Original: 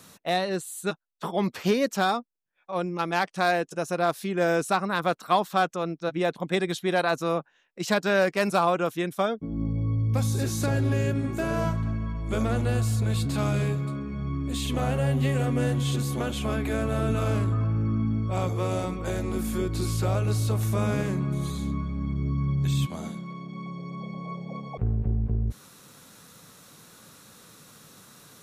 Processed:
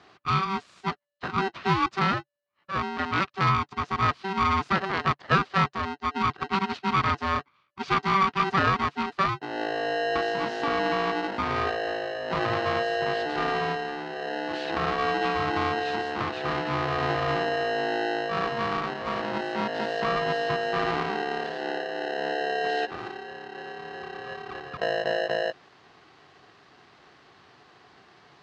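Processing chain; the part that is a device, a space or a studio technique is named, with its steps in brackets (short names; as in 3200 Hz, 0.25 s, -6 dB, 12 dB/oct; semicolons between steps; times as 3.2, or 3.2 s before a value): ring modulator pedal into a guitar cabinet (polarity switched at an audio rate 580 Hz; speaker cabinet 94–4000 Hz, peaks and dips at 140 Hz +4 dB, 450 Hz -4 dB, 810 Hz -4 dB, 1200 Hz +5 dB, 2100 Hz -3 dB, 3300 Hz -5 dB)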